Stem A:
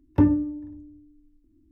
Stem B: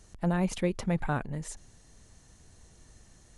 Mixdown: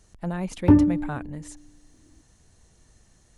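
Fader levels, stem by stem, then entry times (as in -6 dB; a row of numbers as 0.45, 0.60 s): +3.0, -2.0 dB; 0.50, 0.00 s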